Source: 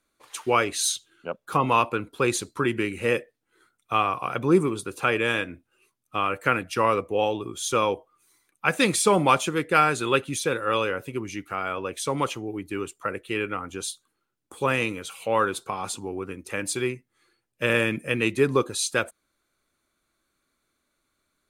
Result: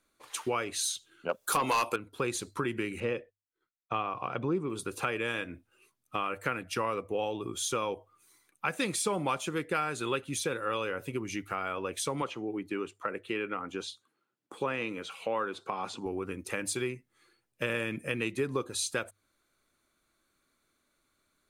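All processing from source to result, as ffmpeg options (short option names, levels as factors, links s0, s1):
-filter_complex "[0:a]asettb=1/sr,asplit=3[s0][s1][s2];[s0]atrim=end=1.294[s3];[s1]atrim=start=1.29:end=1.96,asetpts=PTS-STARTPTS,afade=t=in:d=0.004:c=qsin,afade=t=out:st=0.666:d=0.004:c=qsin,bass=f=250:g=-10,treble=f=4000:g=13,aeval=exprs='0.447*sin(PI/2*2.24*val(0)/0.447)':c=same[s4];[s2]atrim=start=1.956[s5];[s3][s4]acrossfade=d=0.004:c1=hsin:c2=qsin[s6];[s6][s5]acrossfade=d=0.004:c1=qsin:c2=hsin,asettb=1/sr,asplit=3[s7][s8][s9];[s7]atrim=end=3.004[s10];[s8]atrim=start=3:end=4.7,asetpts=PTS-STARTPTS,afade=t=in:d=0.004:c=qsin,afade=t=out:st=1.696:d=0.004:c=qsin,lowpass=3700,agate=range=0.0224:threshold=0.00282:ratio=3:release=100:detection=peak,equalizer=f=1800:w=1.3:g=-4.5[s11];[s9]atrim=start=4.696[s12];[s10][s11]acrossfade=d=0.004:c1=hsin:c2=qsin[s13];[s13][s12]acrossfade=d=0.004:c1=qsin:c2=hsin,asettb=1/sr,asplit=3[s14][s15][s16];[s14]atrim=end=12.224[s17];[s15]atrim=start=12.22:end=16.06,asetpts=PTS-STARTPTS,afade=t=in:d=0.004:c=qsin,afade=t=out:st=3.836:d=0.004:c=qsin,highpass=160,highshelf=f=6000:g=-11.5,acrossover=split=6300[s18][s19];[s19]acompressor=threshold=0.00126:ratio=4:attack=1:release=60[s20];[s18][s20]amix=inputs=2:normalize=0[s21];[s16]atrim=start=16.056[s22];[s17][s21]acrossfade=d=0.004:c1=hsin:c2=qsin[s23];[s23][s22]acrossfade=d=0.004:c1=qsin:c2=hsin,acompressor=threshold=0.0282:ratio=3,bandreject=f=50:t=h:w=6,bandreject=f=100:t=h:w=6"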